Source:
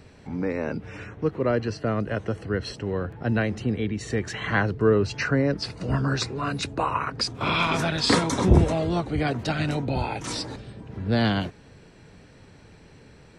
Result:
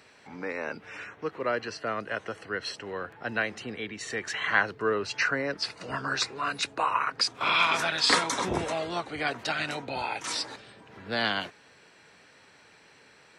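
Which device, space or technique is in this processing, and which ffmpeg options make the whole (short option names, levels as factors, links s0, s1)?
filter by subtraction: -filter_complex "[0:a]asplit=2[s0][s1];[s1]lowpass=1500,volume=-1[s2];[s0][s2]amix=inputs=2:normalize=0"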